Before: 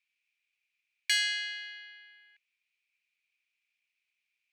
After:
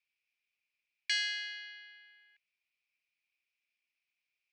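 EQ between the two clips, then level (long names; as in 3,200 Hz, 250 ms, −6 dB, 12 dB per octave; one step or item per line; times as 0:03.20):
high-frequency loss of the air 100 metres
parametric band 5,200 Hz +7.5 dB 0.42 octaves
−3.5 dB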